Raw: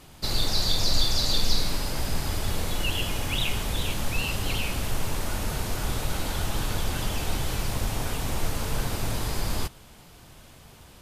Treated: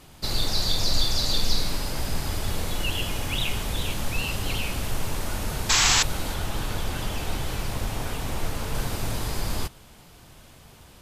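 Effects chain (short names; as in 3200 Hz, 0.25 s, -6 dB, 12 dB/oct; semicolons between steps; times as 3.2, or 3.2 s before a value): 5.69–6.03 painted sound noise 720–8000 Hz -20 dBFS; 6.34–8.75 tone controls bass -1 dB, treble -3 dB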